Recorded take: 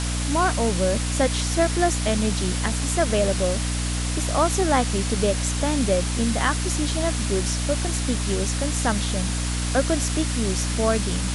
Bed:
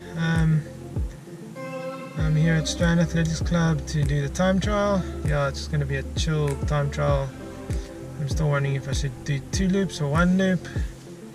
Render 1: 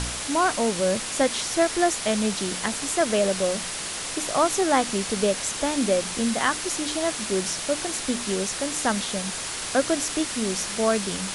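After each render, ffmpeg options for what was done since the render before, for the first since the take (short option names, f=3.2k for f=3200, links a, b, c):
-af "bandreject=f=60:t=h:w=4,bandreject=f=120:t=h:w=4,bandreject=f=180:t=h:w=4,bandreject=f=240:t=h:w=4,bandreject=f=300:t=h:w=4"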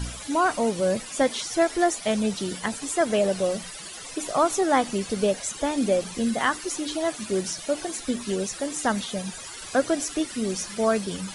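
-af "afftdn=nr=15:nf=-32"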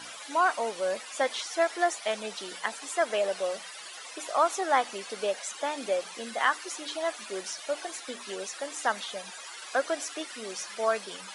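-af "highpass=690,highshelf=f=5.9k:g=-10.5"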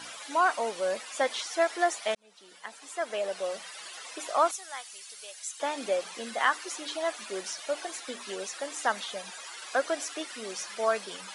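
-filter_complex "[0:a]asettb=1/sr,asplit=3[a][b][c];[a]atrim=end=4.514[d];[b]atrim=start=4.51:end=5.6,asetpts=PTS-STARTPTS,afade=t=in:d=0.004:c=qsin,afade=t=out:st=1.086:d=0.004:c=qsin,aderivative[e];[c]atrim=start=5.596[f];[d][e]acrossfade=d=0.004:c1=hsin:c2=qsin[g];[g][f]acrossfade=d=0.004:c1=qsin:c2=hsin,asplit=2[h][i];[h]atrim=end=2.15,asetpts=PTS-STARTPTS,afade=t=out:st=2.146:d=0.004:c=hsin[j];[i]atrim=start=2.15,asetpts=PTS-STARTPTS,afade=t=in:d=1.67[k];[j][k]concat=n=2:v=0:a=1"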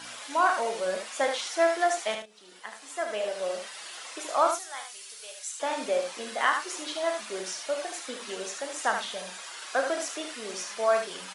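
-filter_complex "[0:a]asplit=2[a][b];[b]adelay=33,volume=-8.5dB[c];[a][c]amix=inputs=2:normalize=0,aecho=1:1:75:0.473"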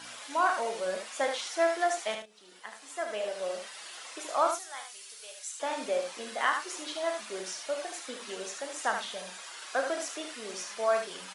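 -af "volume=-3dB"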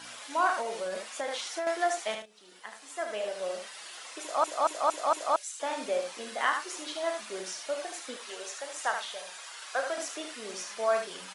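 -filter_complex "[0:a]asettb=1/sr,asplit=3[a][b][c];[a]atrim=end=0.614[d];[b]atrim=start=0.61:end=1.67,asetpts=PTS-STARTPTS,afade=t=in:d=0.004:c=qsin,afade=t=out:st=1.056:d=0.004:c=qsin,acompressor=threshold=-29dB:ratio=6:attack=3.2:release=140:knee=1:detection=peak[e];[c]atrim=start=1.666[f];[d][e]acrossfade=d=0.004:c1=hsin:c2=qsin[g];[g][f]acrossfade=d=0.004:c1=qsin:c2=hsin,asettb=1/sr,asplit=3[h][i][j];[h]atrim=end=8.164[k];[i]atrim=start=8.16:end=9.98,asetpts=PTS-STARTPTS,afade=t=in:d=0.004:c=qsin,afade=t=out:st=1.816:d=0.004:c=qsin,highpass=470[l];[j]atrim=start=9.976[m];[k][l]acrossfade=d=0.004:c1=hsin:c2=qsin[n];[n][m]acrossfade=d=0.004:c1=qsin:c2=hsin,asplit=6[o][p][q][r][s][t];[o]atrim=end=4.442[u];[p]atrim=start=4.208:end=4.442[v];[q]atrim=start=4.208:end=4.442[w];[r]atrim=start=4.208:end=4.442[x];[s]atrim=start=4.208:end=4.442[y];[t]atrim=start=5.358[z];[u][v]acrossfade=d=0.004:c1=hsin:c2=hsin[aa];[aa][w]acrossfade=d=0.004:c1=hsin:c2=hsin[ab];[ab][x]acrossfade=d=0.004:c1=hsin:c2=hsin[ac];[ac][y]acrossfade=d=0.004:c1=hsin:c2=hsin[ad];[ad][z]acrossfade=d=0.004:c1=hsin:c2=hsin"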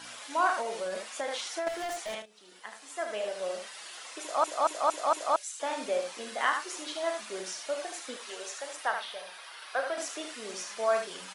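-filter_complex "[0:a]asettb=1/sr,asplit=3[a][b][c];[a]atrim=end=1.684[d];[b]atrim=start=1.68:end=2.14,asetpts=PTS-STARTPTS,afade=t=in:d=0.004:c=qsin,afade=t=out:st=0.456:d=0.004:c=qsin,volume=33dB,asoftclip=hard,volume=-33dB[e];[c]atrim=start=2.136[f];[d][e]acrossfade=d=0.004:c1=hsin:c2=qsin[g];[g][f]acrossfade=d=0.004:c1=qsin:c2=hsin,asettb=1/sr,asplit=3[h][i][j];[h]atrim=end=8.764[k];[i]atrim=start=8.76:end=9.98,asetpts=PTS-STARTPTS,afade=t=in:d=0.004:c=qsin,afade=t=out:st=1.216:d=0.004:c=qsin,equalizer=f=7.1k:w=2:g=-13.5[l];[j]atrim=start=9.976[m];[k][l]acrossfade=d=0.004:c1=hsin:c2=qsin[n];[n][m]acrossfade=d=0.004:c1=qsin:c2=hsin"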